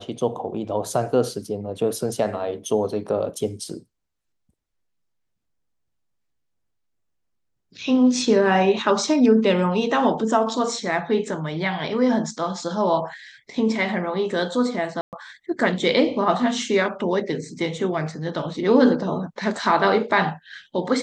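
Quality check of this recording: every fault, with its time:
15.01–15.13 gap 0.118 s

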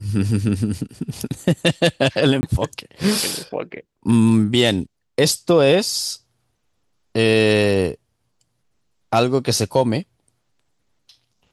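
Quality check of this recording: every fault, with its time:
2.41–2.43 gap 20 ms

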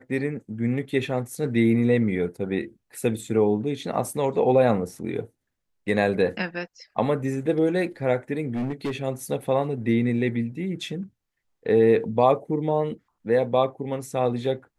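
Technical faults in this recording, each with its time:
8.49–8.96 clipped -23.5 dBFS

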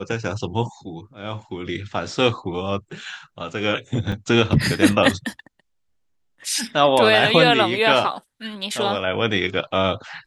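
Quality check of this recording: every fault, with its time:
4.12 gap 3.4 ms

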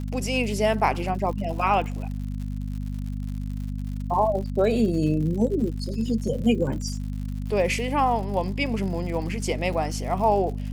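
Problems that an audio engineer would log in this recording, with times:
crackle 110/s -34 dBFS
hum 50 Hz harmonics 5 -30 dBFS

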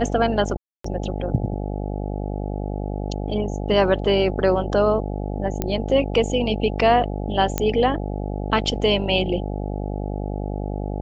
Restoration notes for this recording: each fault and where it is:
buzz 50 Hz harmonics 17 -27 dBFS
0.57–0.84 gap 0.274 s
5.62 pop -9 dBFS
7.58 pop -6 dBFS

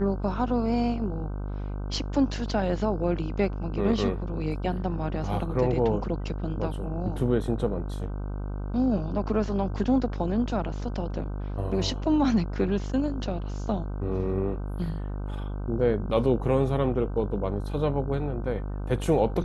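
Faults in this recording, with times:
buzz 50 Hz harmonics 31 -32 dBFS

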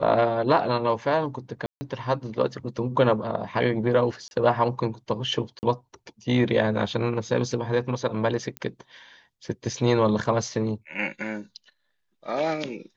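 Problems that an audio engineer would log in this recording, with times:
1.66–1.81 gap 0.15 s
4.28–4.31 gap 31 ms
5.59–5.63 gap 39 ms
8.57 pop -17 dBFS

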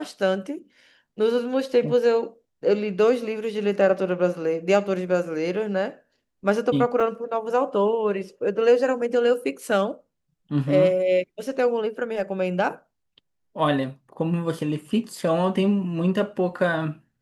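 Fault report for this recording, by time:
7 gap 3.2 ms

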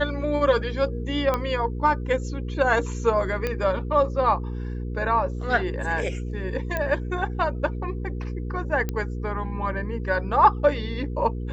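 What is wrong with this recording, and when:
hum 60 Hz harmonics 8 -30 dBFS
1.34 pop -11 dBFS
3.47 pop -13 dBFS
6.77 pop -13 dBFS
8.89 pop -14 dBFS

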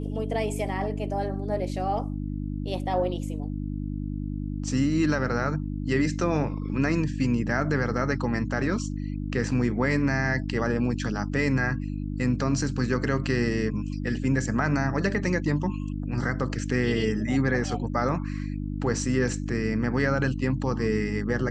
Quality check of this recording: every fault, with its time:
hum 50 Hz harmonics 6 -31 dBFS

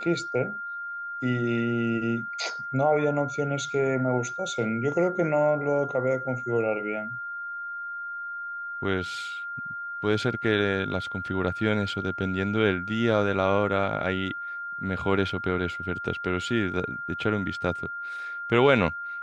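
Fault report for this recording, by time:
tone 1400 Hz -32 dBFS

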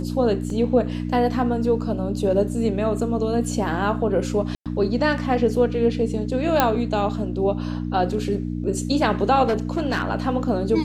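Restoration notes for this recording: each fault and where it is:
hum 60 Hz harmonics 5 -27 dBFS
0.5 gap 2 ms
4.55–4.66 gap 0.107 s
6.6 pop -2 dBFS
9.46–10.09 clipped -17 dBFS

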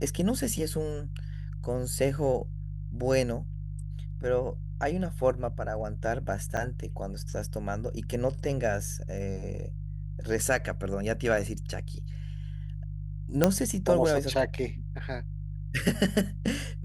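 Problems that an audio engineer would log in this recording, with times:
hum 50 Hz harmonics 3 -36 dBFS
6.57 gap 3.5 ms
13.44 pop -6 dBFS

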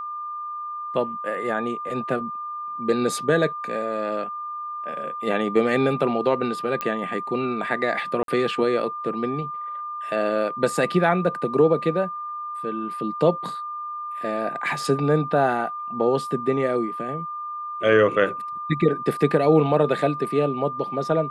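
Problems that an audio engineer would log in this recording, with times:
tone 1200 Hz -29 dBFS
6.81 pop -12 dBFS
8.23–8.28 gap 52 ms

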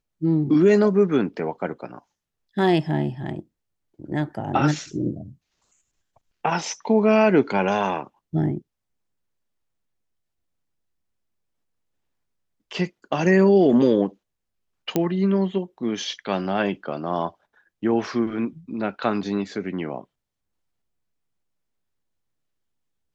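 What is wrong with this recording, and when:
14.96 pop -8 dBFS

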